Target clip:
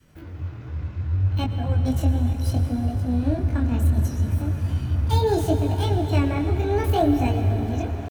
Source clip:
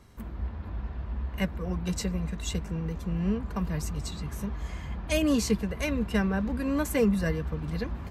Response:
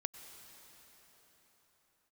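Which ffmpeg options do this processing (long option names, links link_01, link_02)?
-filter_complex "[0:a]asetrate=64194,aresample=44100,atempo=0.686977,acrossover=split=170|3900[link_01][link_02][link_03];[link_01]dynaudnorm=framelen=750:gausssize=3:maxgain=13.5dB[link_04];[link_03]aeval=exprs='0.02*(abs(mod(val(0)/0.02+3,4)-2)-1)':channel_layout=same[link_05];[link_04][link_02][link_05]amix=inputs=3:normalize=0,adynamicequalizer=threshold=0.00891:dfrequency=640:dqfactor=1.2:tfrequency=640:tqfactor=1.2:attack=5:release=100:ratio=0.375:range=2.5:mode=boostabove:tftype=bell,flanger=delay=19.5:depth=5.6:speed=0.68[link_06];[1:a]atrim=start_sample=2205[link_07];[link_06][link_07]afir=irnorm=-1:irlink=0,volume=4dB"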